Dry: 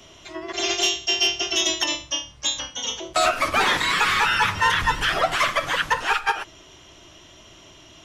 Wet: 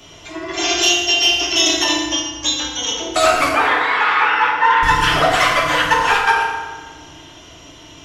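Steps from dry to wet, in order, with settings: 3.49–4.83 BPF 480–2100 Hz; FDN reverb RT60 1.4 s, low-frequency decay 1.1×, high-frequency decay 0.65×, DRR -2.5 dB; gain +3 dB

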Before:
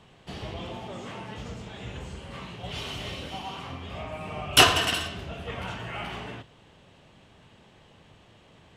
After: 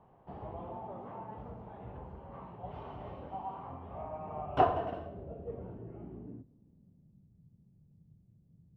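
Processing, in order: low-pass sweep 880 Hz -> 160 Hz, 4.4–7.31; gain -8.5 dB

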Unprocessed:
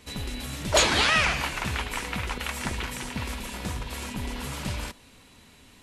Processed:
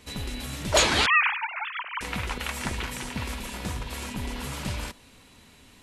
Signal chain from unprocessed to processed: 1.06–2.01 sine-wave speech

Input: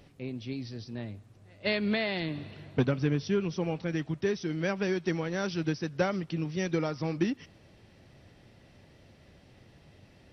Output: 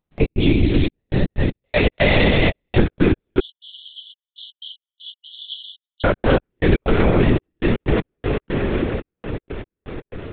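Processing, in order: non-linear reverb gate 0.45 s flat, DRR 1 dB; gate -47 dBFS, range -58 dB; diffused feedback echo 0.579 s, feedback 59%, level -14 dB; compressor 6:1, threshold -38 dBFS, peak gain reduction 16.5 dB; step gate ".x.xxxx..x.x." 120 bpm -60 dB; LPC vocoder at 8 kHz whisper; upward compressor, threshold -54 dBFS; 3.4–6.04 brick-wall FIR high-pass 2900 Hz; maximiser +30.5 dB; gain -3.5 dB

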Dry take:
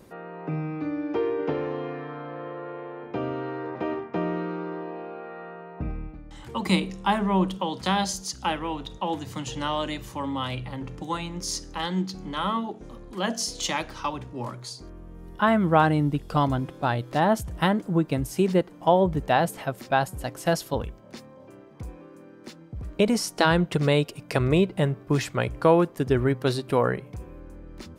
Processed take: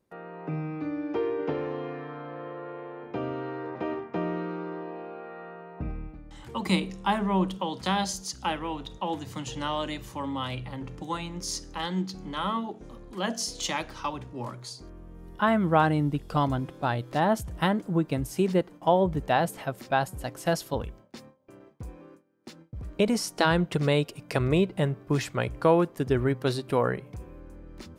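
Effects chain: gate with hold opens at -38 dBFS; gain -2.5 dB

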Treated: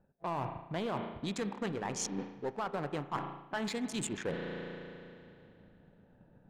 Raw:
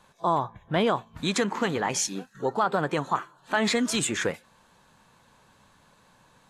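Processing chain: Wiener smoothing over 41 samples; sample leveller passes 1; in parallel at -6 dB: overloaded stage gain 30.5 dB; on the sum: low-pass opened by the level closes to 2400 Hz, open at -19 dBFS; spring tank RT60 2.6 s, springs 35 ms, chirp 60 ms, DRR 10 dB; transient shaper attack +5 dB, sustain -1 dB; reverse; compressor 6:1, threshold -35 dBFS, peak gain reduction 20 dB; reverse

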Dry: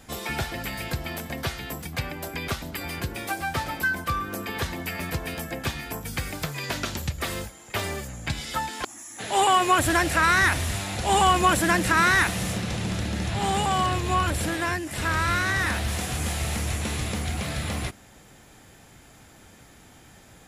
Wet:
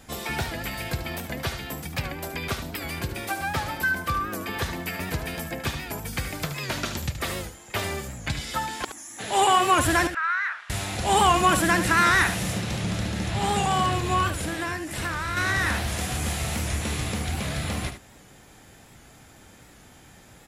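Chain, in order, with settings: 10.07–10.7 ladder band-pass 1600 Hz, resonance 55%; 14.27–15.37 compressor 5:1, threshold -26 dBFS, peak gain reduction 6 dB; echo 74 ms -10 dB; record warp 78 rpm, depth 100 cents

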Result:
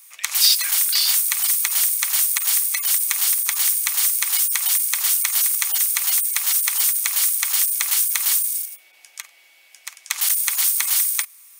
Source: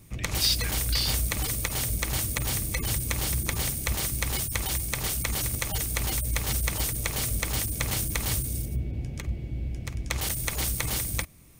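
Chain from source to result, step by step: HPF 1000 Hz 24 dB/oct; high shelf 5600 Hz +10.5 dB; gain +4 dB

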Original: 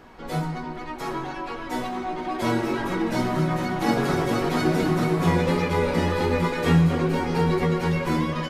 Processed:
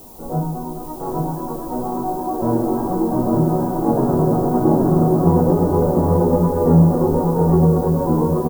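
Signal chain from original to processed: inverse Chebyshev low-pass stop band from 2400 Hz, stop band 50 dB; added noise violet -49 dBFS; tapped delay 0.297/0.829 s -16.5/-3 dB; gain +5.5 dB

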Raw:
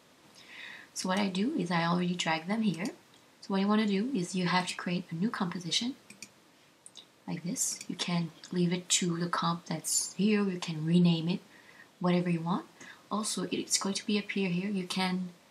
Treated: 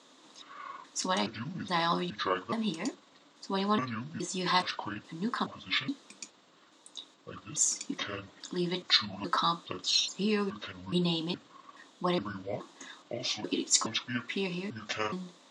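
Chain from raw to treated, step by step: trilling pitch shifter -9.5 st, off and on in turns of 0.42 s; speaker cabinet 250–8300 Hz, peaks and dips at 280 Hz +7 dB, 1100 Hz +5 dB, 2300 Hz -4 dB, 3700 Hz +8 dB, 6900 Hz +7 dB

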